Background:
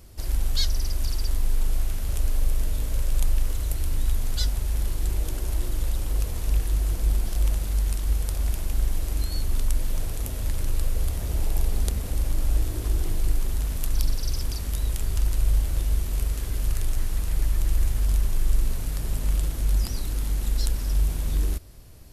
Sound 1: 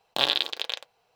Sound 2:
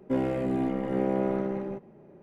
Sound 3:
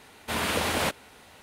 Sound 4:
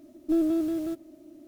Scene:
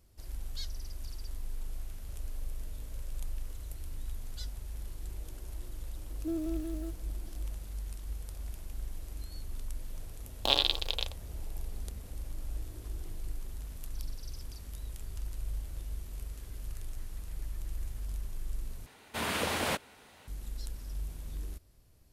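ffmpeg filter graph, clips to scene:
ffmpeg -i bed.wav -i cue0.wav -i cue1.wav -i cue2.wav -i cue3.wav -filter_complex "[0:a]volume=-15.5dB[link_01];[1:a]equalizer=frequency=1700:width_type=o:width=0.82:gain=-10[link_02];[link_01]asplit=2[link_03][link_04];[link_03]atrim=end=18.864[link_05];[3:a]atrim=end=1.42,asetpts=PTS-STARTPTS,volume=-5dB[link_06];[link_04]atrim=start=20.276[link_07];[4:a]atrim=end=1.47,asetpts=PTS-STARTPTS,volume=-10.5dB,afade=type=in:duration=0.004:curve=hsin,afade=type=out:start_time=1.466:duration=0.004:curve=hsin,adelay=5960[link_08];[link_02]atrim=end=1.15,asetpts=PTS-STARTPTS,volume=-1.5dB,afade=type=in:duration=0.004:curve=hsin,afade=type=out:start_time=1.146:duration=0.004:curve=hsin,adelay=10290[link_09];[link_05][link_06]acrossfade=duration=0.004:curve1=hsin:curve2=hsin[link_10];[link_10][link_07]acrossfade=duration=0.004:curve1=hsin:curve2=hsin[link_11];[link_11][link_08][link_09]amix=inputs=3:normalize=0" out.wav

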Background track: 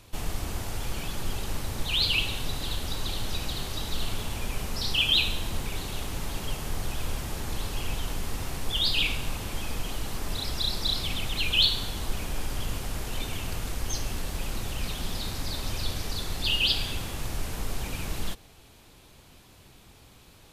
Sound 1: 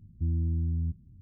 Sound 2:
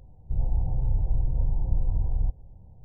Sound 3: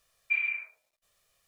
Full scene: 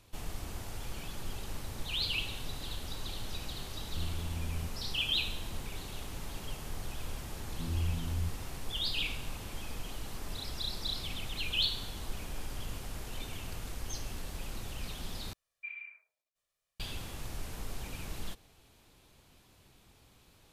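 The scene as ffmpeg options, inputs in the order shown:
ffmpeg -i bed.wav -i cue0.wav -i cue1.wav -i cue2.wav -filter_complex "[1:a]asplit=2[link_01][link_02];[0:a]volume=-8.5dB[link_03];[link_01]alimiter=level_in=3.5dB:limit=-24dB:level=0:latency=1:release=71,volume=-3.5dB[link_04];[link_02]asplit=2[link_05][link_06];[link_06]afreqshift=2.6[link_07];[link_05][link_07]amix=inputs=2:normalize=1[link_08];[link_03]asplit=2[link_09][link_10];[link_09]atrim=end=15.334[link_11];[3:a]atrim=end=1.47,asetpts=PTS-STARTPTS,volume=-15dB[link_12];[link_10]atrim=start=16.796[link_13];[link_04]atrim=end=1.21,asetpts=PTS-STARTPTS,volume=-5.5dB,afade=type=in:duration=0.004:curve=hsin,afade=type=out:start_time=1.206:duration=0.004:curve=hsin,adelay=3760[link_14];[link_08]atrim=end=1.21,asetpts=PTS-STARTPTS,volume=-3dB,afade=type=in:duration=0.004:curve=hsin,afade=type=out:start_time=1.206:duration=0.004:curve=hsin,adelay=325458S[link_15];[link_11][link_12]acrossfade=duration=0.004:curve1=hsin:curve2=hsin[link_16];[link_16][link_13]acrossfade=duration=0.004:curve1=hsin:curve2=hsin[link_17];[link_17][link_14][link_15]amix=inputs=3:normalize=0" out.wav

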